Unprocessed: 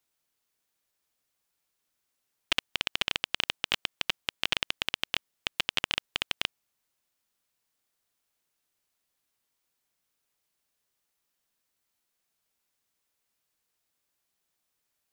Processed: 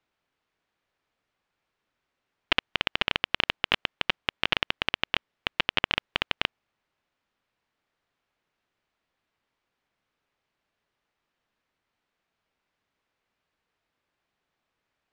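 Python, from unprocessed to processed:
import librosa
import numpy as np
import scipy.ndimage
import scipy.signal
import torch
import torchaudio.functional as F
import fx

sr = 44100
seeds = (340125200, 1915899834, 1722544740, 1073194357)

y = scipy.signal.sosfilt(scipy.signal.butter(2, 2600.0, 'lowpass', fs=sr, output='sos'), x)
y = y * 10.0 ** (7.0 / 20.0)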